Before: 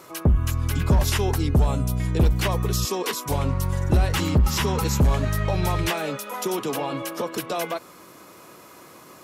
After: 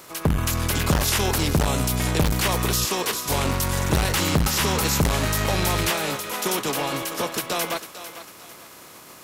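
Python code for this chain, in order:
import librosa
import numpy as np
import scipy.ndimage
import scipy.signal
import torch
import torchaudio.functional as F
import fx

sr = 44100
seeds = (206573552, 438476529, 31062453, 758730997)

y = fx.spec_flatten(x, sr, power=0.6)
y = fx.echo_thinned(y, sr, ms=449, feedback_pct=37, hz=420.0, wet_db=-12)
y = fx.transformer_sat(y, sr, knee_hz=340.0)
y = y * librosa.db_to_amplitude(1.5)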